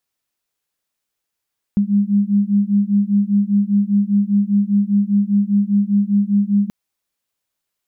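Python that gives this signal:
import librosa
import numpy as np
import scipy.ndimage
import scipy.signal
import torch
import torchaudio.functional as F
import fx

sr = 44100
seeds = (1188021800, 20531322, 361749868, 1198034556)

y = fx.two_tone_beats(sr, length_s=4.93, hz=200.0, beat_hz=5.0, level_db=-16.0)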